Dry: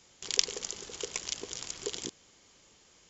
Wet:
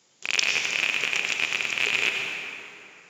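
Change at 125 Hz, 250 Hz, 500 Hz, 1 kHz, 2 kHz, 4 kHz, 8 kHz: +5.0 dB, +3.5 dB, +2.0 dB, +14.0 dB, +23.0 dB, +8.0 dB, n/a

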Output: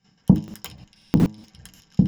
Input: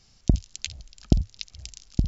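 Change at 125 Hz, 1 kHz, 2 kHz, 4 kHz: +4.5, +9.5, +1.5, -5.5 dB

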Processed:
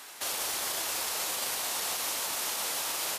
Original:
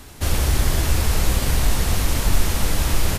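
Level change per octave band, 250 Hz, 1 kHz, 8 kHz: -22.5, -6.5, -3.5 dB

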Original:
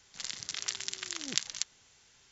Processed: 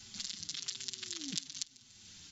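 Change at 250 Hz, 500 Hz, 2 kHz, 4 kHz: 0.0, -8.0, -9.5, -3.5 dB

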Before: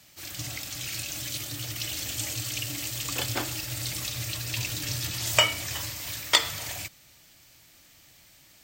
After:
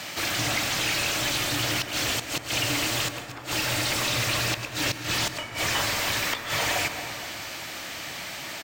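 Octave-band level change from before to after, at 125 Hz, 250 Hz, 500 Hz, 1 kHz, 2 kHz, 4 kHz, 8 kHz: +2.0, +8.0, +6.0, +7.0, +6.5, +3.0, +2.0 dB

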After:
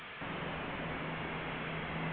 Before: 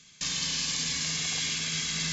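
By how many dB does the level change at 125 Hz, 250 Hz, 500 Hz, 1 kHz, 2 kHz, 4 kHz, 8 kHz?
-2.0 dB, -0.5 dB, +8.5 dB, +5.5 dB, -5.0 dB, -19.0 dB, n/a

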